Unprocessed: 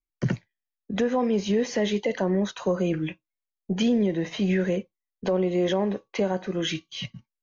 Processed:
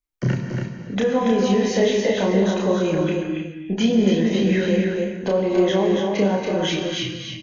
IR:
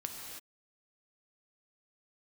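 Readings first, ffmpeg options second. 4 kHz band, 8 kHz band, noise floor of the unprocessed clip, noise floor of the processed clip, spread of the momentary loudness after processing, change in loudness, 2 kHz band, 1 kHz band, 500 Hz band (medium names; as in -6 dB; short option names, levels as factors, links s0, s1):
+6.5 dB, no reading, under -85 dBFS, -36 dBFS, 8 LU, +5.5 dB, +6.0 dB, +6.5 dB, +6.5 dB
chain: -filter_complex "[0:a]aecho=1:1:282:0.562,asplit=2[s0][s1];[1:a]atrim=start_sample=2205,adelay=31[s2];[s1][s2]afir=irnorm=-1:irlink=0,volume=1.12[s3];[s0][s3]amix=inputs=2:normalize=0,volume=1.19"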